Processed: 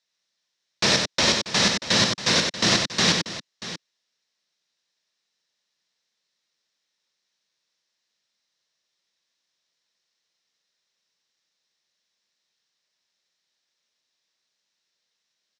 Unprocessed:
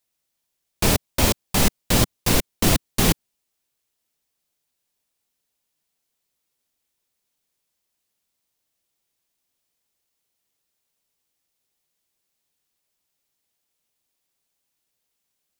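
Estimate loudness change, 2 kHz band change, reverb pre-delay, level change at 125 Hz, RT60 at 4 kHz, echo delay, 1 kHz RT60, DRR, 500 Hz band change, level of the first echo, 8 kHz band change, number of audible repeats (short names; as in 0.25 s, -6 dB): +1.0 dB, +4.5 dB, none, -7.0 dB, none, 93 ms, none, none, -1.5 dB, -4.5 dB, -1.0 dB, 2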